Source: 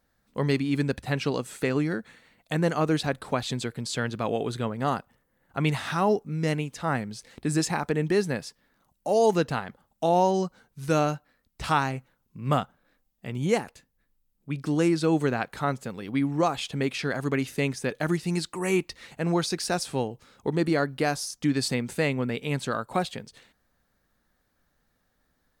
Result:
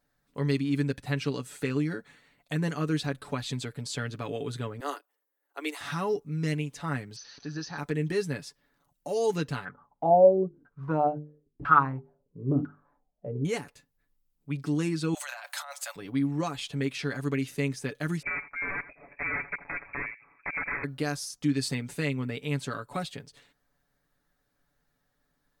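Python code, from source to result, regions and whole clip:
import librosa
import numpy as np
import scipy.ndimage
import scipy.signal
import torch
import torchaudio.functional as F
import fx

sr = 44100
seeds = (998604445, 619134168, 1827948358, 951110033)

y = fx.chain(x, sr, fx.steep_highpass(hz=300.0, slope=72),
    fx.high_shelf(hz=8300.0, db=12.0),
    fx.upward_expand(threshold_db=-45.0, expansion=1.5), at=(4.8, 5.81))
y = fx.chain(y, sr, fx.crossing_spikes(level_db=-26.0),
    fx.cheby_ripple(hz=6200.0, ripple_db=9),
    fx.peak_eq(hz=2100.0, db=-14.0, octaves=0.29), at=(7.16, 7.78))
y = fx.chain(y, sr, fx.hum_notches(base_hz=50, count=9),
    fx.filter_lfo_lowpass(shape='saw_down', hz=1.0, low_hz=290.0, high_hz=1500.0, q=7.4), at=(9.65, 13.45))
y = fx.chain(y, sr, fx.steep_highpass(hz=580.0, slope=96),
    fx.high_shelf(hz=3000.0, db=12.0),
    fx.over_compress(threshold_db=-35.0, ratio=-1.0), at=(15.14, 15.96))
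y = fx.chain(y, sr, fx.overflow_wrap(gain_db=21.0),
    fx.freq_invert(carrier_hz=2500),
    fx.echo_single(ms=84, db=-17.5), at=(18.22, 20.84))
y = fx.dynamic_eq(y, sr, hz=740.0, q=1.4, threshold_db=-39.0, ratio=4.0, max_db=-8)
y = y + 0.62 * np.pad(y, (int(7.0 * sr / 1000.0), 0))[:len(y)]
y = y * librosa.db_to_amplitude(-5.0)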